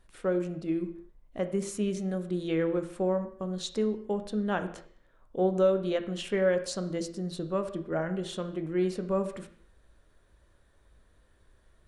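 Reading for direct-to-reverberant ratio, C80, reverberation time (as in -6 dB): 7.5 dB, 14.5 dB, no single decay rate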